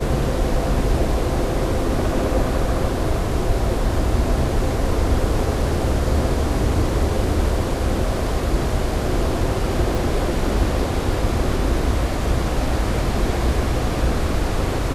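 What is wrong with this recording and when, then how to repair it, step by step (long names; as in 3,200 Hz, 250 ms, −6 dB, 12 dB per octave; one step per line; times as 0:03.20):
0:09.95: drop-out 2.7 ms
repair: repair the gap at 0:09.95, 2.7 ms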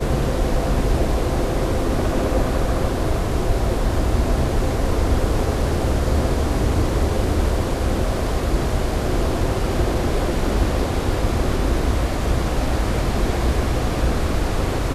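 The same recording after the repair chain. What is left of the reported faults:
none of them is left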